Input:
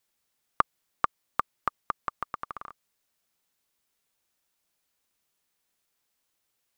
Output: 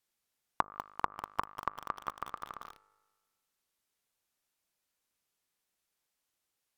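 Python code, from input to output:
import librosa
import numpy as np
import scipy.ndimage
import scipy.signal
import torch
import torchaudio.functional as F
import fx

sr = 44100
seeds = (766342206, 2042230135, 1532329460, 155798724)

y = fx.comb_fb(x, sr, f0_hz=51.0, decay_s=1.4, harmonics='all', damping=0.0, mix_pct=50)
y = fx.env_lowpass_down(y, sr, base_hz=780.0, full_db=-31.0)
y = fx.echo_crushed(y, sr, ms=196, feedback_pct=80, bits=6, wet_db=-10.0)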